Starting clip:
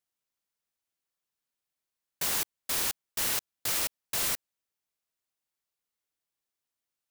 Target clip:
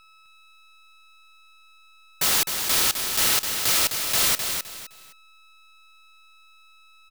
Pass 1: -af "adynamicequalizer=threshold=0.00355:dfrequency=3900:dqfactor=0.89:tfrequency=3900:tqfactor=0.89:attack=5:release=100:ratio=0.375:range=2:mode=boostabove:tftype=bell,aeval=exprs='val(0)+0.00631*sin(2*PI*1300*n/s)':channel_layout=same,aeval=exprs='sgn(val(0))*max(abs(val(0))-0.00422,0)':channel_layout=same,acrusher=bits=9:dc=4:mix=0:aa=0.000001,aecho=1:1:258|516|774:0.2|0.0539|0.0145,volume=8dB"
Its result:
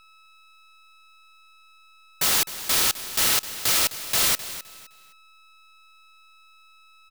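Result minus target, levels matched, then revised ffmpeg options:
echo-to-direct −7.5 dB
-af "adynamicequalizer=threshold=0.00355:dfrequency=3900:dqfactor=0.89:tfrequency=3900:tqfactor=0.89:attack=5:release=100:ratio=0.375:range=2:mode=boostabove:tftype=bell,aeval=exprs='val(0)+0.00631*sin(2*PI*1300*n/s)':channel_layout=same,aeval=exprs='sgn(val(0))*max(abs(val(0))-0.00422,0)':channel_layout=same,acrusher=bits=9:dc=4:mix=0:aa=0.000001,aecho=1:1:258|516|774:0.473|0.128|0.0345,volume=8dB"

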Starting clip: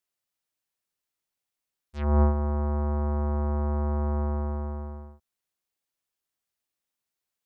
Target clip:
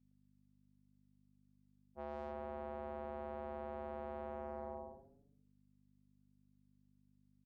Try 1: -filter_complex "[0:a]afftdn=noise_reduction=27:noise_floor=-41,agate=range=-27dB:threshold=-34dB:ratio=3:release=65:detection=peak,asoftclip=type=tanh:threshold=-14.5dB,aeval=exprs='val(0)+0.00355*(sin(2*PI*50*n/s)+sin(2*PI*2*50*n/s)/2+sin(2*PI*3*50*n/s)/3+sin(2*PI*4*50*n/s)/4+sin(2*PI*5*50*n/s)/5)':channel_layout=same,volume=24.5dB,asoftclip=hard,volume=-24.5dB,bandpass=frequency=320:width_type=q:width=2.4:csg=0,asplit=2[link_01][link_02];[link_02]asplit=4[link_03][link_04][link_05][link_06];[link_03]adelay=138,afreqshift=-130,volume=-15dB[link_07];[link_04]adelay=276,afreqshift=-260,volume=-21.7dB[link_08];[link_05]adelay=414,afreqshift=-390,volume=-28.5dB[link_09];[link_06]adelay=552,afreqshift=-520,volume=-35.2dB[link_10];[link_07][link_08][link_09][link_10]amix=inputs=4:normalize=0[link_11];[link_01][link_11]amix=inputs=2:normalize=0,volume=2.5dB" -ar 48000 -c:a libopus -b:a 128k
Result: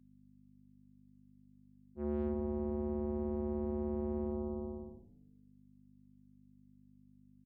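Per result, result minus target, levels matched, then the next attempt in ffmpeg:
250 Hz band +7.0 dB; gain into a clipping stage and back: distortion −5 dB
-filter_complex "[0:a]afftdn=noise_reduction=27:noise_floor=-41,agate=range=-27dB:threshold=-34dB:ratio=3:release=65:detection=peak,asoftclip=type=tanh:threshold=-14.5dB,aeval=exprs='val(0)+0.00355*(sin(2*PI*50*n/s)+sin(2*PI*2*50*n/s)/2+sin(2*PI*3*50*n/s)/3+sin(2*PI*4*50*n/s)/4+sin(2*PI*5*50*n/s)/5)':channel_layout=same,volume=24.5dB,asoftclip=hard,volume=-24.5dB,bandpass=frequency=690:width_type=q:width=2.4:csg=0,asplit=2[link_01][link_02];[link_02]asplit=4[link_03][link_04][link_05][link_06];[link_03]adelay=138,afreqshift=-130,volume=-15dB[link_07];[link_04]adelay=276,afreqshift=-260,volume=-21.7dB[link_08];[link_05]adelay=414,afreqshift=-390,volume=-28.5dB[link_09];[link_06]adelay=552,afreqshift=-520,volume=-35.2dB[link_10];[link_07][link_08][link_09][link_10]amix=inputs=4:normalize=0[link_11];[link_01][link_11]amix=inputs=2:normalize=0,volume=2.5dB" -ar 48000 -c:a libopus -b:a 128k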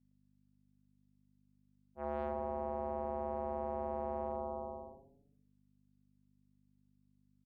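gain into a clipping stage and back: distortion −5 dB
-filter_complex "[0:a]afftdn=noise_reduction=27:noise_floor=-41,agate=range=-27dB:threshold=-34dB:ratio=3:release=65:detection=peak,asoftclip=type=tanh:threshold=-14.5dB,aeval=exprs='val(0)+0.00355*(sin(2*PI*50*n/s)+sin(2*PI*2*50*n/s)/2+sin(2*PI*3*50*n/s)/3+sin(2*PI*4*50*n/s)/4+sin(2*PI*5*50*n/s)/5)':channel_layout=same,volume=32dB,asoftclip=hard,volume=-32dB,bandpass=frequency=690:width_type=q:width=2.4:csg=0,asplit=2[link_01][link_02];[link_02]asplit=4[link_03][link_04][link_05][link_06];[link_03]adelay=138,afreqshift=-130,volume=-15dB[link_07];[link_04]adelay=276,afreqshift=-260,volume=-21.7dB[link_08];[link_05]adelay=414,afreqshift=-390,volume=-28.5dB[link_09];[link_06]adelay=552,afreqshift=-520,volume=-35.2dB[link_10];[link_07][link_08][link_09][link_10]amix=inputs=4:normalize=0[link_11];[link_01][link_11]amix=inputs=2:normalize=0,volume=2.5dB" -ar 48000 -c:a libopus -b:a 128k

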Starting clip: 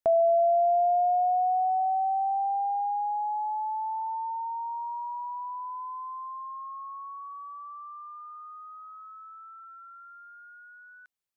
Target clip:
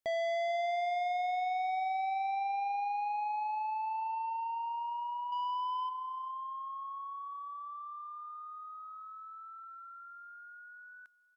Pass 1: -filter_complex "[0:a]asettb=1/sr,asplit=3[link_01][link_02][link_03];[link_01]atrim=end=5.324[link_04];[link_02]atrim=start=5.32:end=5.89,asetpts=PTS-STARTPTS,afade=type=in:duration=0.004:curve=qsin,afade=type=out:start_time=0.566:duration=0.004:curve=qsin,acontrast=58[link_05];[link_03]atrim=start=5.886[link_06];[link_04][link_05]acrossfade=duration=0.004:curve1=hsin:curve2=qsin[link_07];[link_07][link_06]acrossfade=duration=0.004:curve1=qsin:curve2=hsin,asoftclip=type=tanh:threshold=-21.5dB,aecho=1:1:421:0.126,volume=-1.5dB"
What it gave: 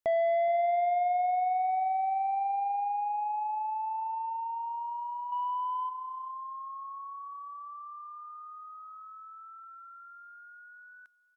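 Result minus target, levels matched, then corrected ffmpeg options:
soft clipping: distortion −9 dB
-filter_complex "[0:a]asettb=1/sr,asplit=3[link_01][link_02][link_03];[link_01]atrim=end=5.324[link_04];[link_02]atrim=start=5.32:end=5.89,asetpts=PTS-STARTPTS,afade=type=in:duration=0.004:curve=qsin,afade=type=out:start_time=0.566:duration=0.004:curve=qsin,acontrast=58[link_05];[link_03]atrim=start=5.886[link_06];[link_04][link_05]acrossfade=duration=0.004:curve1=hsin:curve2=qsin[link_07];[link_07][link_06]acrossfade=duration=0.004:curve1=qsin:curve2=hsin,asoftclip=type=tanh:threshold=-30dB,aecho=1:1:421:0.126,volume=-1.5dB"

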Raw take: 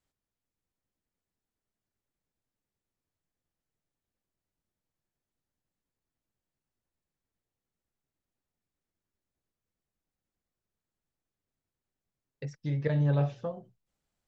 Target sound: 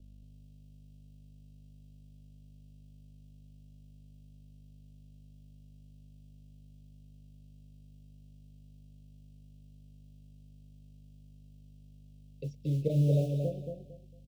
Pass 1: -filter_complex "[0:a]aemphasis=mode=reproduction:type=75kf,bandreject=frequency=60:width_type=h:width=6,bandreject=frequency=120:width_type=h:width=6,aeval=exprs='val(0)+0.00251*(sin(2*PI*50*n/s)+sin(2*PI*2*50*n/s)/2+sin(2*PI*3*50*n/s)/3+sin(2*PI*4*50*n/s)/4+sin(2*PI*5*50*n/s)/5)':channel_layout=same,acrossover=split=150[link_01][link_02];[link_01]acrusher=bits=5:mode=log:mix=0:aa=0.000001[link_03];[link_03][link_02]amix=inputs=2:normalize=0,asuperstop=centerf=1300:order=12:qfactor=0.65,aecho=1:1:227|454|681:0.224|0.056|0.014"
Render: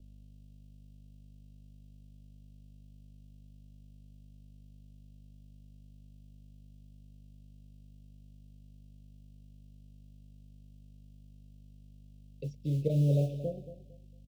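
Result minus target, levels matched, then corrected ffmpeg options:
echo-to-direct −7 dB
-filter_complex "[0:a]aemphasis=mode=reproduction:type=75kf,bandreject=frequency=60:width_type=h:width=6,bandreject=frequency=120:width_type=h:width=6,aeval=exprs='val(0)+0.00251*(sin(2*PI*50*n/s)+sin(2*PI*2*50*n/s)/2+sin(2*PI*3*50*n/s)/3+sin(2*PI*4*50*n/s)/4+sin(2*PI*5*50*n/s)/5)':channel_layout=same,acrossover=split=150[link_01][link_02];[link_01]acrusher=bits=5:mode=log:mix=0:aa=0.000001[link_03];[link_03][link_02]amix=inputs=2:normalize=0,asuperstop=centerf=1300:order=12:qfactor=0.65,aecho=1:1:227|454|681:0.531|0.133|0.0332"

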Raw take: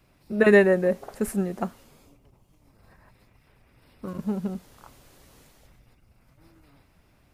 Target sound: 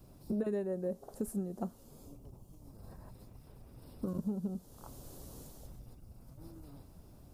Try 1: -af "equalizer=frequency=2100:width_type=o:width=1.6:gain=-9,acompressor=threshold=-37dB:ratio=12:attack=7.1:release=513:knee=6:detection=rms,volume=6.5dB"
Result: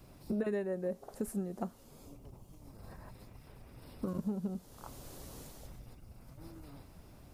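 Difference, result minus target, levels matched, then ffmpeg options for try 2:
2,000 Hz band +8.5 dB
-af "equalizer=frequency=2100:width_type=o:width=1.6:gain=-20,acompressor=threshold=-37dB:ratio=12:attack=7.1:release=513:knee=6:detection=rms,volume=6.5dB"

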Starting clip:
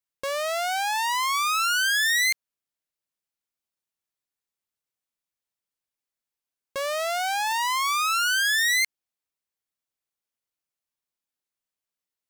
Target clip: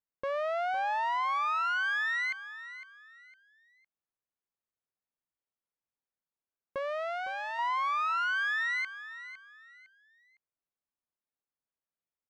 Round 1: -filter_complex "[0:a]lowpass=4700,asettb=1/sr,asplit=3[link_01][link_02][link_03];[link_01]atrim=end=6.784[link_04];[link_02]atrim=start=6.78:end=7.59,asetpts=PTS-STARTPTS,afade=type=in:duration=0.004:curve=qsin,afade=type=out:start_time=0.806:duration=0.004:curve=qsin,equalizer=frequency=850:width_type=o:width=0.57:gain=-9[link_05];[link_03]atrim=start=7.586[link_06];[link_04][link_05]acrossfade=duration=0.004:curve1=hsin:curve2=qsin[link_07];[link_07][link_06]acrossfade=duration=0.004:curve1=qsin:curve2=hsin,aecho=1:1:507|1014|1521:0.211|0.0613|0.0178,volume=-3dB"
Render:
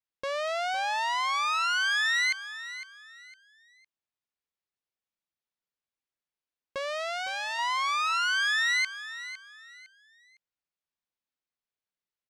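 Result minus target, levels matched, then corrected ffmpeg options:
4,000 Hz band +9.0 dB
-filter_complex "[0:a]lowpass=1600,asettb=1/sr,asplit=3[link_01][link_02][link_03];[link_01]atrim=end=6.784[link_04];[link_02]atrim=start=6.78:end=7.59,asetpts=PTS-STARTPTS,afade=type=in:duration=0.004:curve=qsin,afade=type=out:start_time=0.806:duration=0.004:curve=qsin,equalizer=frequency=850:width_type=o:width=0.57:gain=-9[link_05];[link_03]atrim=start=7.586[link_06];[link_04][link_05]acrossfade=duration=0.004:curve1=hsin:curve2=qsin[link_07];[link_07][link_06]acrossfade=duration=0.004:curve1=qsin:curve2=hsin,aecho=1:1:507|1014|1521:0.211|0.0613|0.0178,volume=-3dB"

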